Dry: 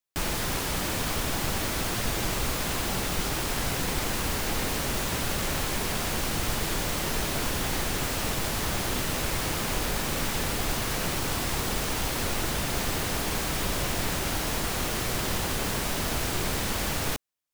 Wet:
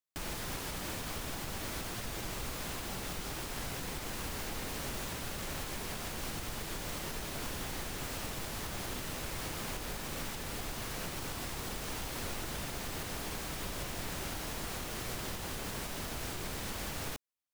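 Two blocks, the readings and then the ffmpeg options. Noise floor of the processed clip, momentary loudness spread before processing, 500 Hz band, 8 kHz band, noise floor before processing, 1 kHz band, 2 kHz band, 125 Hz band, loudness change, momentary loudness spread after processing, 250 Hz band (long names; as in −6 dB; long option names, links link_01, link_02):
−41 dBFS, 0 LU, −10.5 dB, −10.5 dB, −30 dBFS, −10.5 dB, −10.5 dB, −11.0 dB, −10.5 dB, 1 LU, −10.5 dB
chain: -af "alimiter=limit=-21dB:level=0:latency=1:release=233,volume=-7.5dB"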